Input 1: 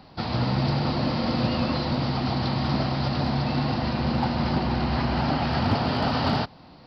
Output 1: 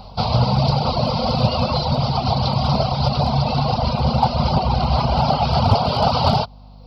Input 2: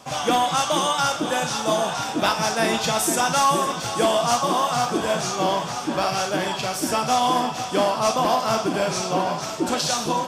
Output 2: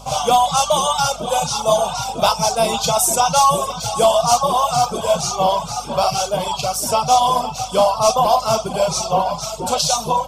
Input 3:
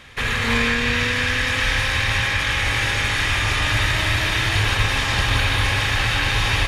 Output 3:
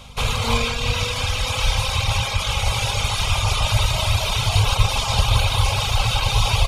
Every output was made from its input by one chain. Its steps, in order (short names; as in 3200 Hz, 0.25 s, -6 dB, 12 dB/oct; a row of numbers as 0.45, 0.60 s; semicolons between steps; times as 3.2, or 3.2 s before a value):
fixed phaser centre 740 Hz, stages 4; reverb removal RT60 1.1 s; hum 50 Hz, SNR 24 dB; normalise peaks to -3 dBFS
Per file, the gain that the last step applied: +12.5, +8.5, +6.5 dB